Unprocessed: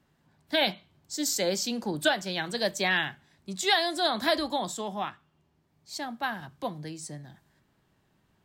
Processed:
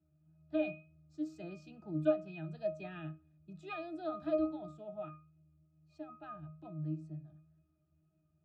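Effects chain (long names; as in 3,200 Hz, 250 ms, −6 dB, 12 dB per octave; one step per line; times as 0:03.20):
resonances in every octave D#, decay 0.35 s
tape wow and flutter 19 cents
level +5.5 dB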